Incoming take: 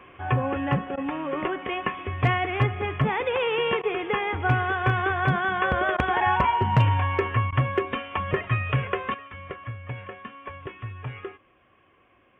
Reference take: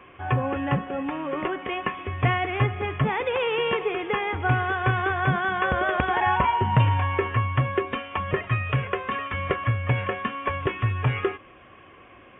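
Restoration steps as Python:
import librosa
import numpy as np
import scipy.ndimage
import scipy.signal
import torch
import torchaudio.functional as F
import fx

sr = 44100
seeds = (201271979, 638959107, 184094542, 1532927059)

y = fx.fix_declip(x, sr, threshold_db=-11.5)
y = fx.fix_interpolate(y, sr, at_s=(0.96, 3.82, 5.97, 7.51), length_ms=13.0)
y = fx.gain(y, sr, db=fx.steps((0.0, 0.0), (9.14, 11.5)))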